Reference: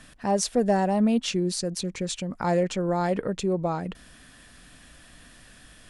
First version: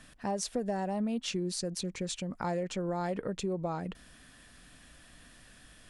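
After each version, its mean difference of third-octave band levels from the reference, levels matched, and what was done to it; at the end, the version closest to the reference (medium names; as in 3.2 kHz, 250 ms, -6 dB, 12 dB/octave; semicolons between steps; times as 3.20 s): 2.5 dB: compression, threshold -24 dBFS, peak gain reduction 7 dB; trim -5 dB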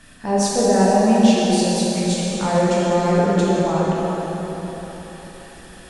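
9.0 dB: plate-style reverb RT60 4.4 s, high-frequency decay 0.7×, DRR -7.5 dB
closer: first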